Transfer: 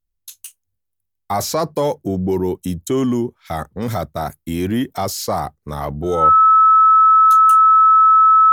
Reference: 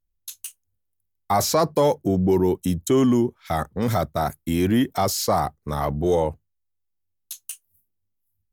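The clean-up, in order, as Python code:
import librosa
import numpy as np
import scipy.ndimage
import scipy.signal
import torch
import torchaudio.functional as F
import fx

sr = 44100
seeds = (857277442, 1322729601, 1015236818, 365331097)

y = fx.notch(x, sr, hz=1300.0, q=30.0)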